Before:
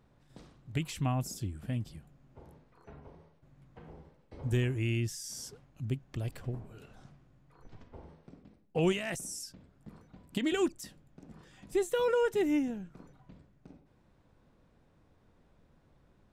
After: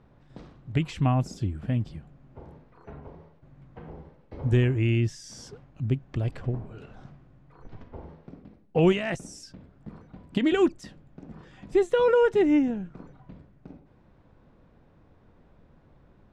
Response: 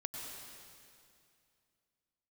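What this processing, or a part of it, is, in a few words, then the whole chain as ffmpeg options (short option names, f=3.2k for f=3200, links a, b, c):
through cloth: -af "lowpass=6.7k,highshelf=f=3.7k:g=-11.5,volume=8dB"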